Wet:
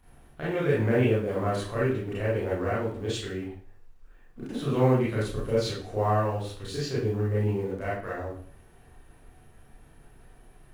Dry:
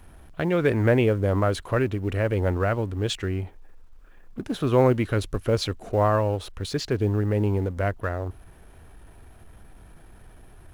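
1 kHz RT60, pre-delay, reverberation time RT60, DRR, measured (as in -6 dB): 0.45 s, 27 ms, 0.50 s, -8.5 dB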